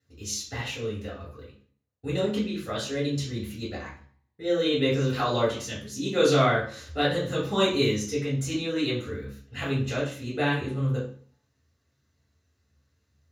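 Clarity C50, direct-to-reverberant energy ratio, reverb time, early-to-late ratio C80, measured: 5.5 dB, −8.0 dB, 0.50 s, 10.0 dB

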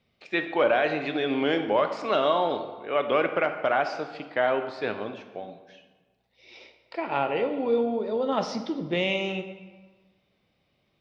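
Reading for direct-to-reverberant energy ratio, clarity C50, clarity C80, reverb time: 7.5 dB, 9.0 dB, 10.5 dB, 1.4 s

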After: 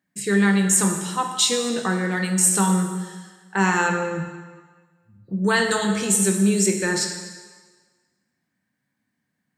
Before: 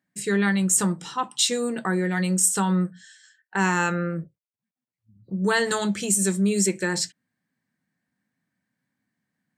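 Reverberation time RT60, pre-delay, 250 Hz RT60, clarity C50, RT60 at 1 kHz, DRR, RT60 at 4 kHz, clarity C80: 1.4 s, 8 ms, 1.3 s, 6.0 dB, 1.5 s, 3.5 dB, 1.4 s, 7.5 dB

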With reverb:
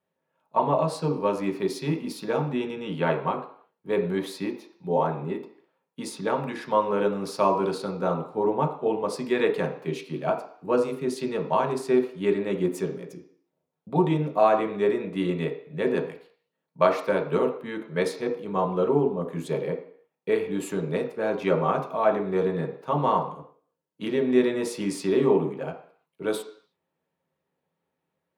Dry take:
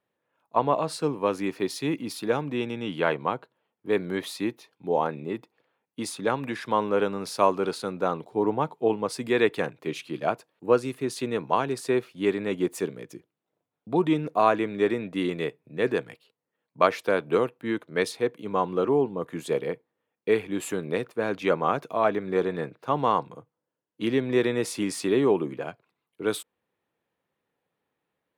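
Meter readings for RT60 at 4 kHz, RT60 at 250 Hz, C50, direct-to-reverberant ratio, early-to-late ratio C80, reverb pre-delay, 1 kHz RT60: 0.60 s, 0.50 s, 9.5 dB, 1.0 dB, 12.5 dB, 3 ms, 0.55 s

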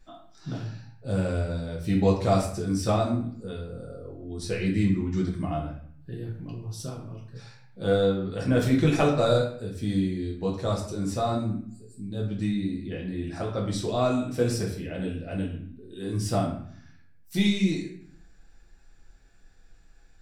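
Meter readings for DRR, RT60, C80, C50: −3.0 dB, 0.55 s, 9.0 dB, 5.5 dB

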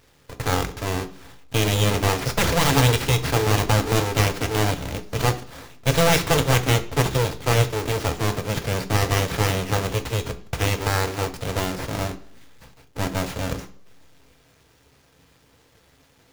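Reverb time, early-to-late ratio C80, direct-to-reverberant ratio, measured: 0.55 s, 19.0 dB, 7.0 dB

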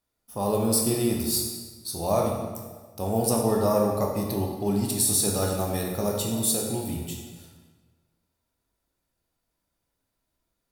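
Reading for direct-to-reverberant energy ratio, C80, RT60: −0.5 dB, 4.5 dB, 1.4 s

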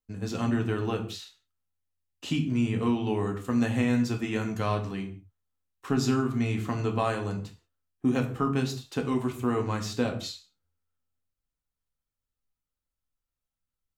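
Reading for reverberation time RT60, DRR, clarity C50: non-exponential decay, 2.5 dB, 11.5 dB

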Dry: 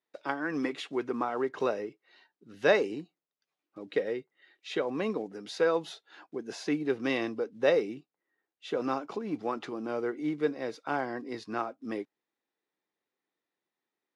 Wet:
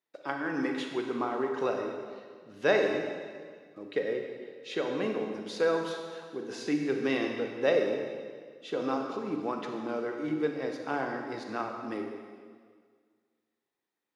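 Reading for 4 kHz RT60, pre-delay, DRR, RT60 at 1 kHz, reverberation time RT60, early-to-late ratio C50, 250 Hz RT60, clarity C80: 1.7 s, 33 ms, 2.5 dB, 1.8 s, 1.8 s, 3.5 dB, 1.9 s, 5.0 dB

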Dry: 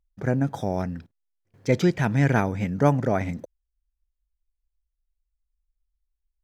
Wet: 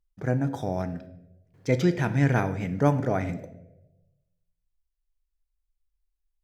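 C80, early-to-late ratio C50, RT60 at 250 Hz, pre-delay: 15.5 dB, 13.5 dB, 1.0 s, 3 ms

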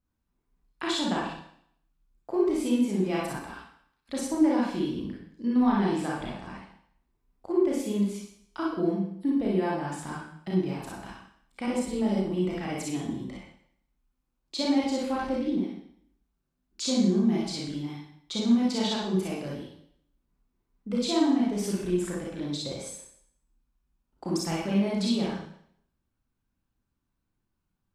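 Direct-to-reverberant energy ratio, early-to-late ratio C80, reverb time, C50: −5.0 dB, 5.5 dB, 0.65 s, −1.5 dB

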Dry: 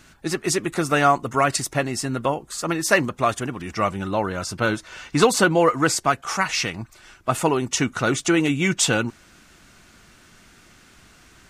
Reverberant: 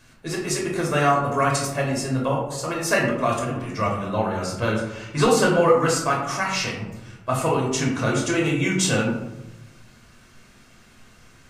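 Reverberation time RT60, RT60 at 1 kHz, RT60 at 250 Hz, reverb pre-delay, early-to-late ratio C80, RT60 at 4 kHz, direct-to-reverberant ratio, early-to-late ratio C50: 0.95 s, 0.90 s, 1.3 s, 8 ms, 7.0 dB, 0.50 s, −2.0 dB, 3.5 dB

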